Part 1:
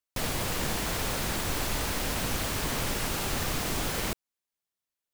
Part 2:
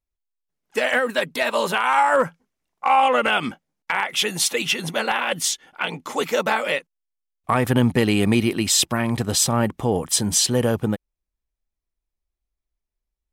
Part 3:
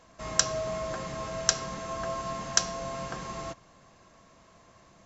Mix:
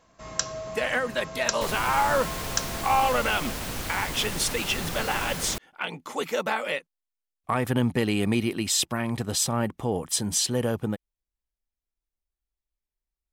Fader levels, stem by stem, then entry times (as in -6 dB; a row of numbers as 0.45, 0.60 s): -2.5, -6.0, -3.5 dB; 1.45, 0.00, 0.00 s